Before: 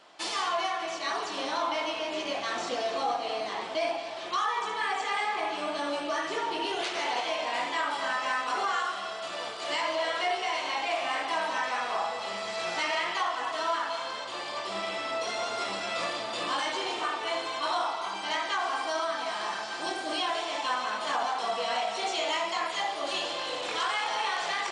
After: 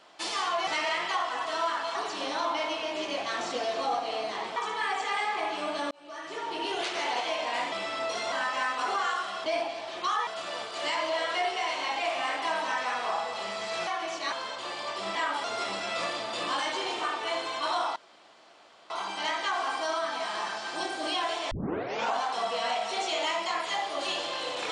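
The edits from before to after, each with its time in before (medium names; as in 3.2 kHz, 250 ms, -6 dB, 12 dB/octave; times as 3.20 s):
0.67–1.12 s: swap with 12.73–14.01 s
3.73–4.56 s: move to 9.13 s
5.91–6.74 s: fade in
7.72–8.01 s: swap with 14.84–15.44 s
17.96 s: insert room tone 0.94 s
20.57 s: tape start 0.65 s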